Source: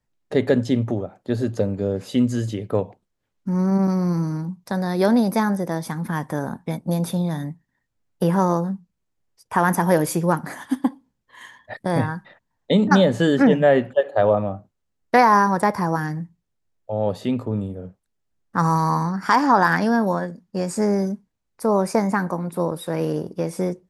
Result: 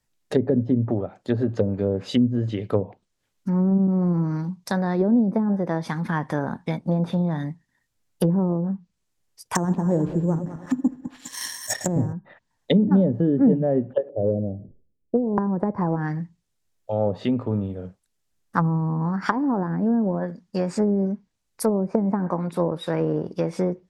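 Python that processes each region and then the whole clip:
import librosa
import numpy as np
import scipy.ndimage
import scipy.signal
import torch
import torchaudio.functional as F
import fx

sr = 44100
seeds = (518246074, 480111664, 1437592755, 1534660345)

y = fx.chain(x, sr, fx.reverse_delay_fb(ms=101, feedback_pct=48, wet_db=-10.0),
    fx.echo_stepped(ms=207, hz=1400.0, octaves=0.7, feedback_pct=70, wet_db=-8.0),
    fx.resample_bad(factor=6, down='none', up='zero_stuff'), at=(9.55, 12.13))
y = fx.chain(y, sr, fx.steep_lowpass(hz=510.0, slope=36),
    fx.sustainer(db_per_s=100.0), at=(14.09, 15.38))
y = fx.env_lowpass_down(y, sr, base_hz=360.0, full_db=-15.5)
y = fx.high_shelf(y, sr, hz=2500.0, db=10.0)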